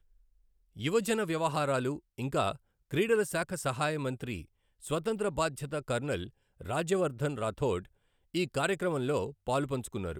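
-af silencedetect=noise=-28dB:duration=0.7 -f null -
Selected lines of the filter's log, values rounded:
silence_start: 0.00
silence_end: 0.84 | silence_duration: 0.84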